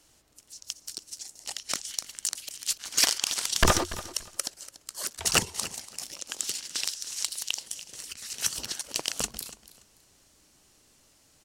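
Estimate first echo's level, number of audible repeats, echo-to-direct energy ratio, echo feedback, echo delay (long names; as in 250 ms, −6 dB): −16.5 dB, 2, −16.5 dB, 22%, 288 ms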